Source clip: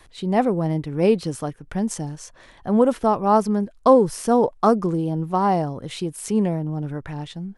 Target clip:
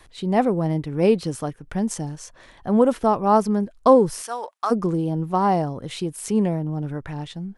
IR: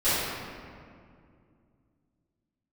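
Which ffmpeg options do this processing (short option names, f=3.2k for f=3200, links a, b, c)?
-filter_complex "[0:a]asplit=3[a][b][c];[a]afade=t=out:st=4.22:d=0.02[d];[b]highpass=1.2k,afade=t=in:st=4.22:d=0.02,afade=t=out:st=4.7:d=0.02[e];[c]afade=t=in:st=4.7:d=0.02[f];[d][e][f]amix=inputs=3:normalize=0"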